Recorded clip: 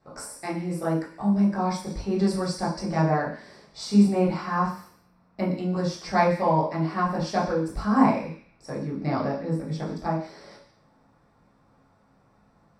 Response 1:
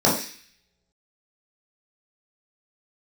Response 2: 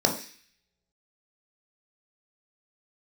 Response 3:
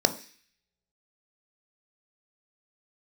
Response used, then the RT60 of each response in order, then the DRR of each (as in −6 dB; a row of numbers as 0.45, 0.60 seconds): 1; non-exponential decay, non-exponential decay, non-exponential decay; −6.5, 1.5, 8.5 decibels